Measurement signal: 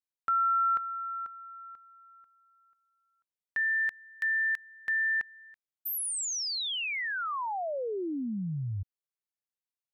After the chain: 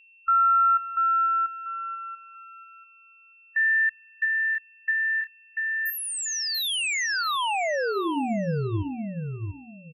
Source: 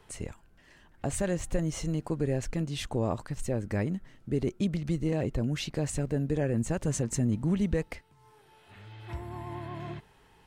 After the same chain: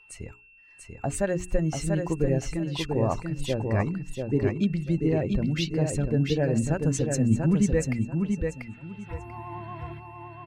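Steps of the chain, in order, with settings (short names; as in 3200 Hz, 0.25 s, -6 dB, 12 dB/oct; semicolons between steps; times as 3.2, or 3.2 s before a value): per-bin expansion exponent 1.5; high shelf 8000 Hz -8 dB; notches 60/120/180/240/300/360/420 Hz; whine 2700 Hz -60 dBFS; feedback echo 0.689 s, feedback 22%, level -4.5 dB; gain +7 dB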